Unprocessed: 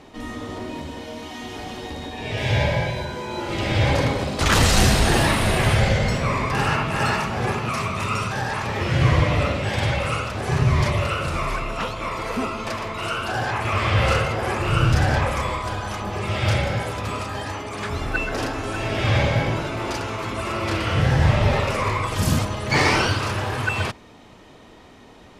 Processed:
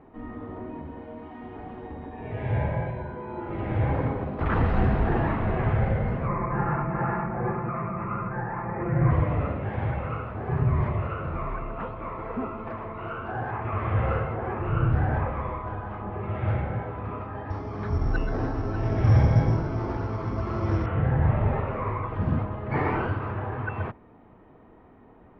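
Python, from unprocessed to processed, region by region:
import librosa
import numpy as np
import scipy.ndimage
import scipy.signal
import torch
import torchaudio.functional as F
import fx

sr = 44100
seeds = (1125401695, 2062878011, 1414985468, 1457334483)

y = fx.chain(x, sr, fx.steep_lowpass(hz=2300.0, slope=48),
    fx.comb(ms=5.8, depth=0.76), at=(6.28, 9.11))
y = fx.chain(y, sr, fx.low_shelf(hz=210.0, db=9.5),
    fx.resample_bad(factor=8, down='filtered', up='zero_stuff'), at=(17.5, 20.86))
y = scipy.signal.sosfilt(scipy.signal.bessel(4, 1200.0, 'lowpass', norm='mag', fs=sr, output='sos'), y)
y = fx.notch(y, sr, hz=570.0, q=12.0)
y = F.gain(torch.from_numpy(y), -4.5).numpy()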